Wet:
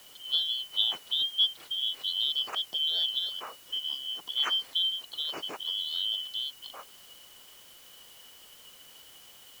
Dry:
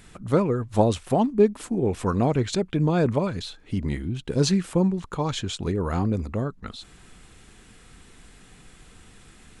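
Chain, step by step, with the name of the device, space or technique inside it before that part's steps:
split-band scrambled radio (band-splitting scrambler in four parts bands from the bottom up 3412; band-pass filter 340–2,900 Hz; white noise bed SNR 21 dB)
level −4 dB

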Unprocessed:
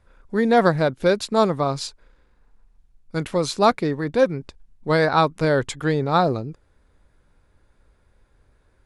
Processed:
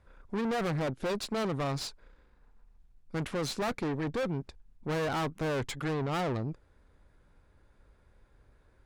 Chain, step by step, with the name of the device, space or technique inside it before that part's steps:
tube preamp driven hard (tube saturation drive 29 dB, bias 0.5; high-shelf EQ 4,300 Hz −5.5 dB)

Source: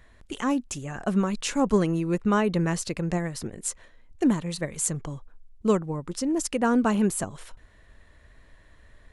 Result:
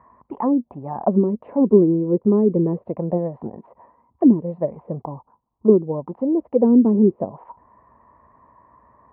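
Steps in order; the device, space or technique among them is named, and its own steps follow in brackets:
envelope filter bass rig (envelope-controlled low-pass 370–1,100 Hz down, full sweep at −19 dBFS; loudspeaker in its box 73–2,200 Hz, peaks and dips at 89 Hz −9 dB, 230 Hz +5 dB, 980 Hz +9 dB, 1,500 Hz −10 dB)
level +1 dB

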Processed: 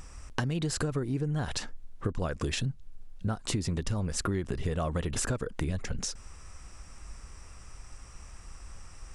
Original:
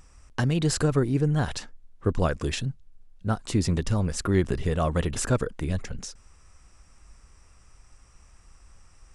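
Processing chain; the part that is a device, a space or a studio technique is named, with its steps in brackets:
serial compression, peaks first (downward compressor 6 to 1, threshold −31 dBFS, peak gain reduction 13.5 dB; downward compressor 1.5 to 1, threshold −40 dBFS, peak gain reduction 5 dB)
level +7 dB

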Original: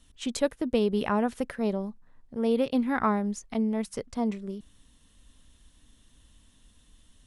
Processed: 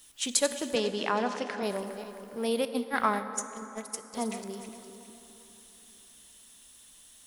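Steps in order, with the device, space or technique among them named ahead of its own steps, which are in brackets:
feedback delay that plays each chunk backwards 204 ms, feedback 55%, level −11 dB
turntable without a phono preamp (RIAA equalisation recording; white noise bed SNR 32 dB)
0:00.75–0:01.63: Chebyshev band-pass filter 150–5,800 Hz, order 3
0:02.65–0:04.14: noise gate −29 dBFS, range −21 dB
dense smooth reverb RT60 3.7 s, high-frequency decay 0.5×, DRR 10 dB

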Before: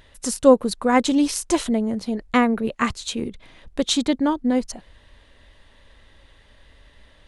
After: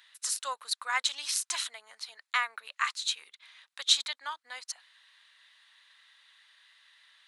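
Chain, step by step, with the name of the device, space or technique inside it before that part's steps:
headphones lying on a table (high-pass filter 1,200 Hz 24 dB per octave; parametric band 4,000 Hz +5.5 dB 0.29 octaves)
level −3.5 dB

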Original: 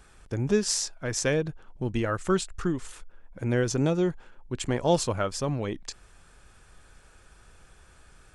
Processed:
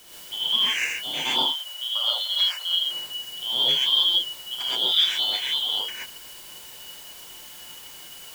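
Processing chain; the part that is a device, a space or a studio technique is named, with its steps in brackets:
split-band scrambled radio (band-splitting scrambler in four parts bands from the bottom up 2413; band-pass filter 380–2,900 Hz; white noise bed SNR 18 dB)
0:01.39–0:02.82: elliptic high-pass filter 560 Hz, stop band 50 dB
reverb whose tail is shaped and stops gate 150 ms rising, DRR −7 dB

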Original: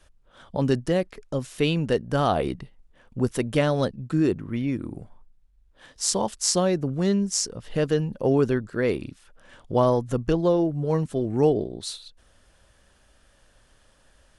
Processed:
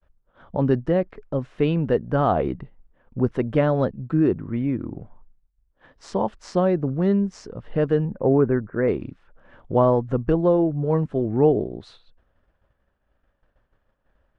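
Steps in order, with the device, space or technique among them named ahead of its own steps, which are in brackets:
hearing-loss simulation (low-pass filter 1,600 Hz 12 dB per octave; downward expander −50 dBFS)
0:08.05–0:08.88: Butterworth low-pass 2,300 Hz 48 dB per octave
level +2.5 dB

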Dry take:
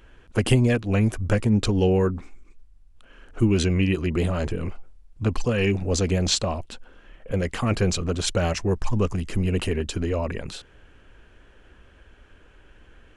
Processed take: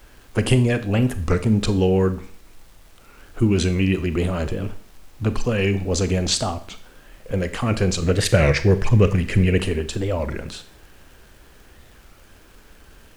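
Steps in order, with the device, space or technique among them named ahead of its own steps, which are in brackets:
warped LP (wow of a warped record 33 1/3 rpm, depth 250 cents; surface crackle; pink noise bed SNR 31 dB)
0:08.02–0:09.58: octave-band graphic EQ 125/500/1,000/2,000 Hz +10/+6/−4/+12 dB
four-comb reverb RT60 0.47 s, combs from 28 ms, DRR 11 dB
level +1.5 dB

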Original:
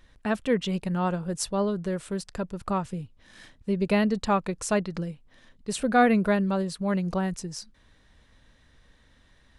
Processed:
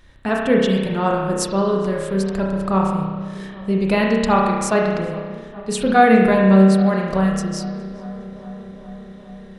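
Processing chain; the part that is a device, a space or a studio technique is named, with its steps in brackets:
dub delay into a spring reverb (feedback echo with a low-pass in the loop 413 ms, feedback 79%, low-pass 2,300 Hz, level −19.5 dB; spring reverb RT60 1.4 s, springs 31 ms, chirp 45 ms, DRR −1.5 dB)
level +5.5 dB

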